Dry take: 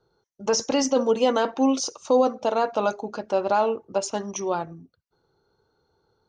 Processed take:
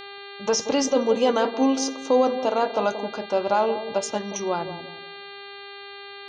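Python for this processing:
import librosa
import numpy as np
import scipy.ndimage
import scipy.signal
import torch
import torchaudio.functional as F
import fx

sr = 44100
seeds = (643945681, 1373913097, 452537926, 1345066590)

y = fx.dmg_buzz(x, sr, base_hz=400.0, harmonics=11, level_db=-40.0, tilt_db=-2, odd_only=False)
y = fx.echo_bbd(y, sr, ms=179, stages=1024, feedback_pct=34, wet_db=-10.0)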